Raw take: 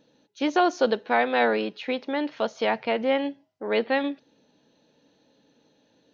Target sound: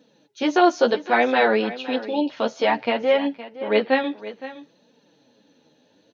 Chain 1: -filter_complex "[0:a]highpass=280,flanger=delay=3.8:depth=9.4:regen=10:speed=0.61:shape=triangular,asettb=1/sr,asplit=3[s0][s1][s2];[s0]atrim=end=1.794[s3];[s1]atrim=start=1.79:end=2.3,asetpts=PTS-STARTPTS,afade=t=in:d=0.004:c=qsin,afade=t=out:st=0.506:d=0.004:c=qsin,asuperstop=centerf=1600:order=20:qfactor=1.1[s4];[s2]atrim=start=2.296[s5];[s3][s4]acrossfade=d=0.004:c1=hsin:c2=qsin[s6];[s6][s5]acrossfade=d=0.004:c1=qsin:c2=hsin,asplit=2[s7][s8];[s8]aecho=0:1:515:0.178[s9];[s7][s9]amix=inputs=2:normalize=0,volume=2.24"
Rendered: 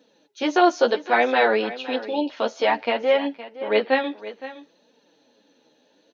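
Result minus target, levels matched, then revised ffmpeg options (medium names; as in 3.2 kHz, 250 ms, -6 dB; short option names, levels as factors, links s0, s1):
125 Hz band -5.0 dB
-filter_complex "[0:a]highpass=98,flanger=delay=3.8:depth=9.4:regen=10:speed=0.61:shape=triangular,asettb=1/sr,asplit=3[s0][s1][s2];[s0]atrim=end=1.794[s3];[s1]atrim=start=1.79:end=2.3,asetpts=PTS-STARTPTS,afade=t=in:d=0.004:c=qsin,afade=t=out:st=0.506:d=0.004:c=qsin,asuperstop=centerf=1600:order=20:qfactor=1.1[s4];[s2]atrim=start=2.296[s5];[s3][s4]acrossfade=d=0.004:c1=hsin:c2=qsin[s6];[s6][s5]acrossfade=d=0.004:c1=qsin:c2=hsin,asplit=2[s7][s8];[s8]aecho=0:1:515:0.178[s9];[s7][s9]amix=inputs=2:normalize=0,volume=2.24"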